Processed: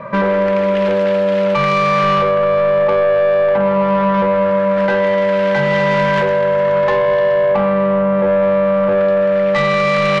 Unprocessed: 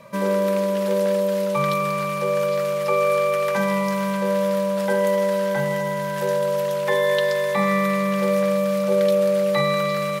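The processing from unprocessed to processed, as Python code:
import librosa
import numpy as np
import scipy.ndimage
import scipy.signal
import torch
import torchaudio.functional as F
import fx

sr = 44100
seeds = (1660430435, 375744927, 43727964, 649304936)

p1 = fx.over_compress(x, sr, threshold_db=-25.0, ratio=-0.5)
p2 = x + (p1 * 10.0 ** (-0.5 / 20.0))
p3 = fx.filter_lfo_lowpass(p2, sr, shape='sine', hz=0.22, low_hz=770.0, high_hz=2700.0, q=1.7)
p4 = 10.0 ** (-15.0 / 20.0) * np.tanh(p3 / 10.0 ** (-15.0 / 20.0))
y = p4 * 10.0 ** (5.5 / 20.0)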